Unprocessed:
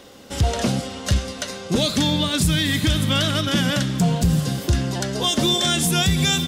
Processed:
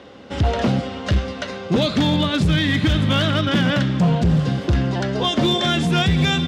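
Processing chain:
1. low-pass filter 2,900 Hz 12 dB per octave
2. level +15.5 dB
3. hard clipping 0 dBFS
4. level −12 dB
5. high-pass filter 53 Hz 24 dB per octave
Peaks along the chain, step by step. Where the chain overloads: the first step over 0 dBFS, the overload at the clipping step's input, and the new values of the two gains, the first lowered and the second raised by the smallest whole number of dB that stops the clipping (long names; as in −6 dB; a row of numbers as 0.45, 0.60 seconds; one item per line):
−11.0, +4.5, 0.0, −12.0, −6.5 dBFS
step 2, 4.5 dB
step 2 +10.5 dB, step 4 −7 dB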